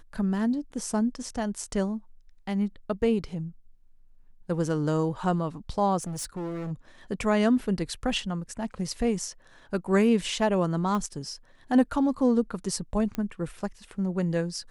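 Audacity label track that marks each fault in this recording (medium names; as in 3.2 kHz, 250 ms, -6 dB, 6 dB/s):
6.000000	6.720000	clipped -30.5 dBFS
10.950000	10.950000	pop -19 dBFS
13.150000	13.150000	pop -18 dBFS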